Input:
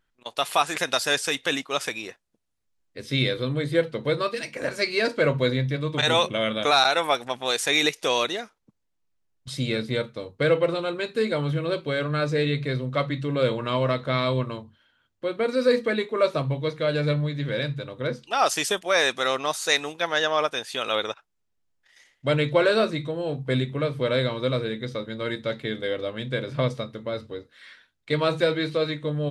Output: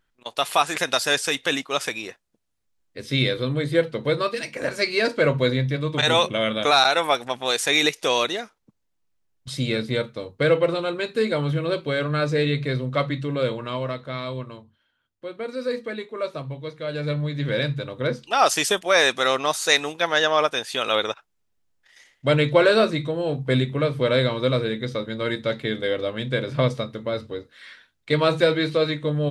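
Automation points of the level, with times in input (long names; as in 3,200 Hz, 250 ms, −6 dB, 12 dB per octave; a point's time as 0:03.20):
0:13.08 +2 dB
0:14.09 −6.5 dB
0:16.79 −6.5 dB
0:17.49 +3.5 dB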